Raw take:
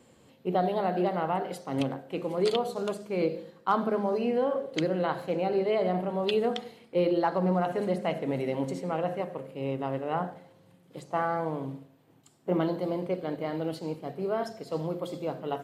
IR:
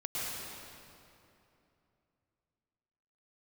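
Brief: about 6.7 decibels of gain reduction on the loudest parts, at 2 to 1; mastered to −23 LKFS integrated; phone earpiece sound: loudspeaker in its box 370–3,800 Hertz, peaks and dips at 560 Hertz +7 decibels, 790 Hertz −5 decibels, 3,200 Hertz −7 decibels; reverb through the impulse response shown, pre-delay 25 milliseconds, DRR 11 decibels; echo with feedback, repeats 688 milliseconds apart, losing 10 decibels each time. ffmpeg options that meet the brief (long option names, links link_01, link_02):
-filter_complex "[0:a]acompressor=threshold=-34dB:ratio=2,aecho=1:1:688|1376|2064|2752:0.316|0.101|0.0324|0.0104,asplit=2[link_01][link_02];[1:a]atrim=start_sample=2205,adelay=25[link_03];[link_02][link_03]afir=irnorm=-1:irlink=0,volume=-16dB[link_04];[link_01][link_04]amix=inputs=2:normalize=0,highpass=370,equalizer=frequency=560:width_type=q:width=4:gain=7,equalizer=frequency=790:width_type=q:width=4:gain=-5,equalizer=frequency=3200:width_type=q:width=4:gain=-7,lowpass=frequency=3800:width=0.5412,lowpass=frequency=3800:width=1.3066,volume=11.5dB"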